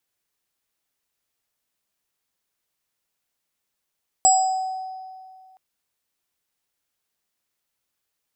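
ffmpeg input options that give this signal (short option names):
-f lavfi -i "aevalsrc='0.211*pow(10,-3*t/2.17)*sin(2*PI*754*t)+0.0299*pow(10,-3*t/1.47)*sin(2*PI*5010*t)+0.251*pow(10,-3*t/0.57)*sin(2*PI*7720*t)':d=1.32:s=44100"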